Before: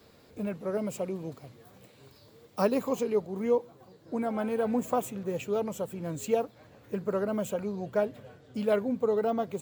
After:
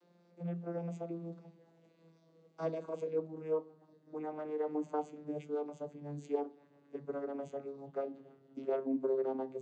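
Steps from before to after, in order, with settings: vocoder on a gliding note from F3, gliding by -5 st; HPF 190 Hz 24 dB/oct; on a send: reverb RT60 0.40 s, pre-delay 3 ms, DRR 10 dB; on the sum: gain -7 dB

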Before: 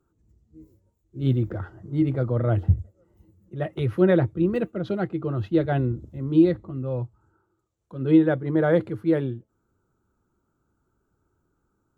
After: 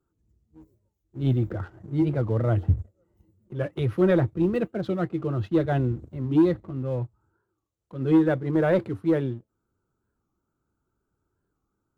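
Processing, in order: sample leveller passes 1; record warp 45 rpm, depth 160 cents; gain -4 dB

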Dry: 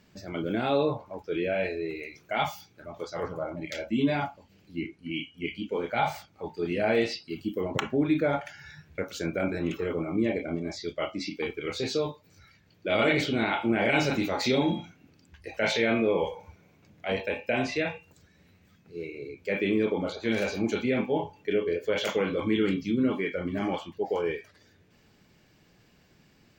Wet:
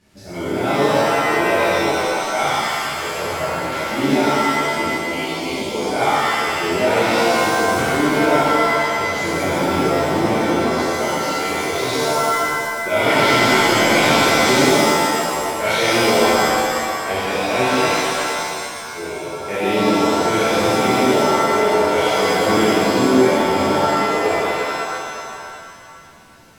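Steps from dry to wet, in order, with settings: CVSD 64 kbps; shimmer reverb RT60 2.3 s, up +7 st, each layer -2 dB, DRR -11 dB; gain -2.5 dB

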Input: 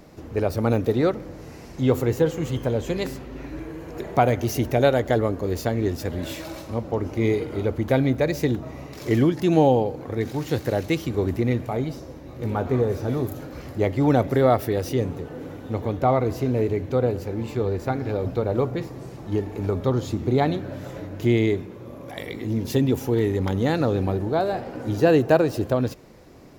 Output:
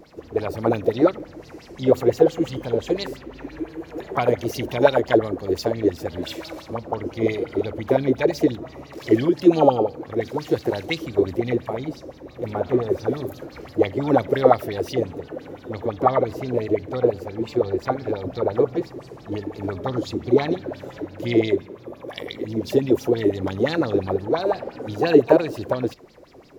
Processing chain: harmoniser +7 st -14 dB; LFO bell 5.8 Hz 320–4900 Hz +18 dB; gain -6.5 dB

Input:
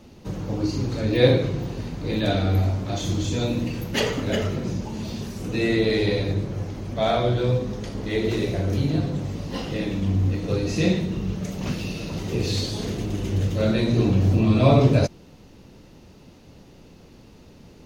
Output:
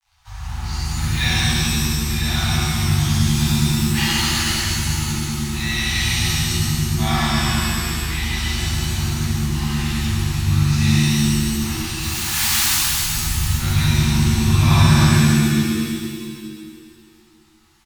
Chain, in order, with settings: 11.99–12.69 spectral contrast lowered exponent 0.13; crossover distortion -43 dBFS; Chebyshev band-stop 100–810 Hz, order 4; on a send: echo 0.143 s -6 dB; on the sum: shimmer reverb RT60 2.1 s, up +7 st, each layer -2 dB, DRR -9.5 dB; gain -2.5 dB

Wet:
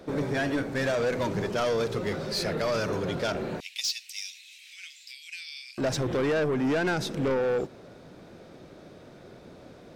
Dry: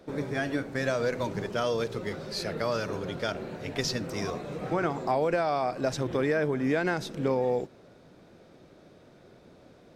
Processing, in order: 3.6–5.78 steep high-pass 2400 Hz 48 dB/oct; soft clip -28 dBFS, distortion -9 dB; gain +6 dB

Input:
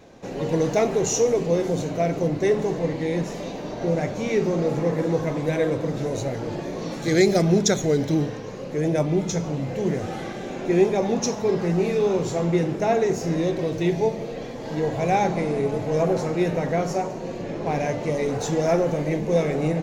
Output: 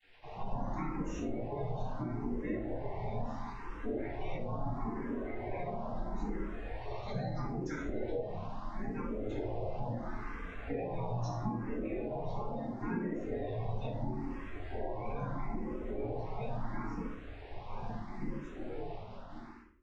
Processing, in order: ending faded out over 5.24 s; flange 0.22 Hz, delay 9.1 ms, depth 7.9 ms, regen +41%; spectral gate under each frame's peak -30 dB strong; requantised 8-bit, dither none; tape spacing loss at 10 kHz 35 dB; spectral gate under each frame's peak -15 dB weak; shoebox room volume 780 m³, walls furnished, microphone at 9.6 m; compressor, threshold -31 dBFS, peak gain reduction 10 dB; low shelf 390 Hz +9 dB; endless phaser +0.75 Hz; gain -4.5 dB

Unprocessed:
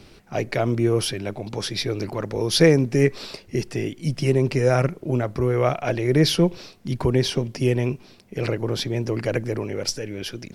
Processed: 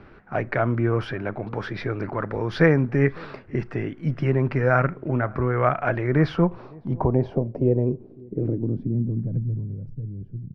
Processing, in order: dynamic EQ 420 Hz, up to -5 dB, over -29 dBFS, Q 1.3; outdoor echo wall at 95 m, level -25 dB; on a send at -20 dB: reverb, pre-delay 6 ms; on the sum: low-pass sweep 1500 Hz -> 140 Hz, 6.09–9.68

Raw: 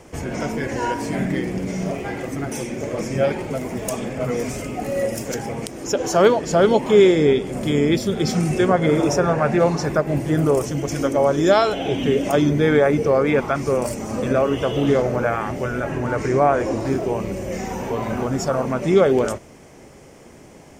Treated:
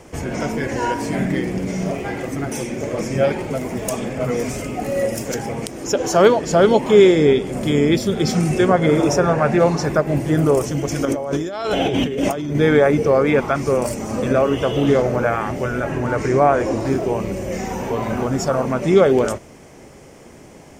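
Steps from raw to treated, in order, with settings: 11.05–12.55 negative-ratio compressor -24 dBFS, ratio -1; gain +2 dB

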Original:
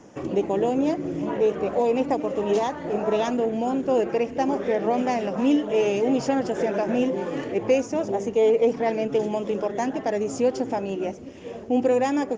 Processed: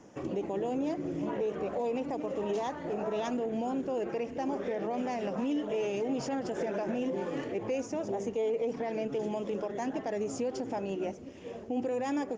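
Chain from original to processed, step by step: limiter -18.5 dBFS, peak gain reduction 8.5 dB; gain -6 dB

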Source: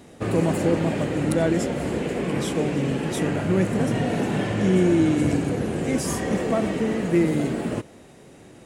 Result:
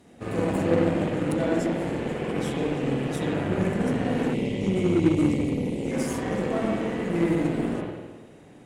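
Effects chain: spring tank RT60 1.3 s, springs 47/51 ms, chirp 40 ms, DRR -4 dB; spectral gain 4.34–5.91, 600–1900 Hz -27 dB; added harmonics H 3 -21 dB, 8 -27 dB, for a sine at -2 dBFS; gain -6 dB

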